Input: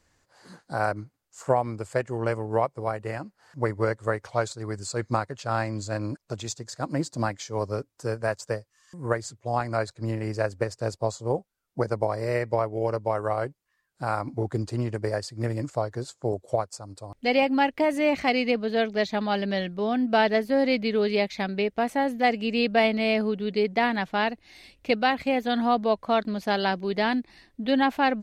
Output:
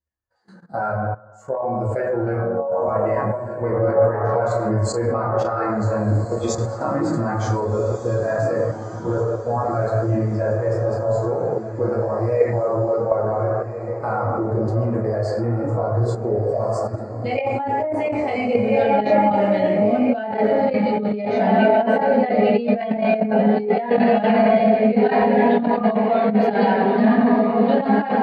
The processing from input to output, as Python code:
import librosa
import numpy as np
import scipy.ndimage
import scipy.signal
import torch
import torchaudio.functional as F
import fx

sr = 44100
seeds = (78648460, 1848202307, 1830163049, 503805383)

y = fx.chord_vocoder(x, sr, chord='major triad', root=54, at=(2.36, 2.88))
y = fx.ellip_lowpass(y, sr, hz=1400.0, order=4, stop_db=40, at=(9.11, 9.64), fade=0.02)
y = fx.rev_fdn(y, sr, rt60_s=1.3, lf_ratio=0.8, hf_ratio=0.5, size_ms=85.0, drr_db=-6.0)
y = fx.level_steps(y, sr, step_db=15)
y = fx.echo_diffused(y, sr, ms=1543, feedback_pct=60, wet_db=-6.5)
y = fx.over_compress(y, sr, threshold_db=-24.0, ratio=-1.0)
y = fx.spectral_expand(y, sr, expansion=1.5)
y = y * 10.0 ** (7.0 / 20.0)